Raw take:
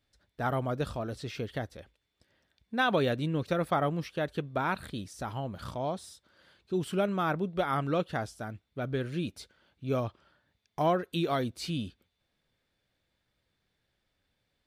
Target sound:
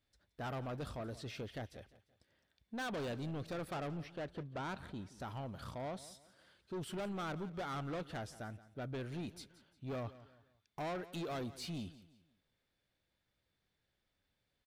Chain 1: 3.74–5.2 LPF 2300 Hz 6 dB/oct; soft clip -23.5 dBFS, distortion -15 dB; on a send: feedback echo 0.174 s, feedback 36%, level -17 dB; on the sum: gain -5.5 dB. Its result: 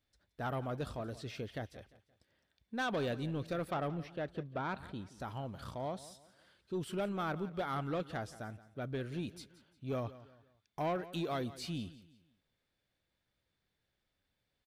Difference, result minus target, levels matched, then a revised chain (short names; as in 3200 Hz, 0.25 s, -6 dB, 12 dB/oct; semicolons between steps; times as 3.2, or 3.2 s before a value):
soft clip: distortion -8 dB
3.74–5.2 LPF 2300 Hz 6 dB/oct; soft clip -32 dBFS, distortion -8 dB; on a send: feedback echo 0.174 s, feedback 36%, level -17 dB; on the sum: gain -5.5 dB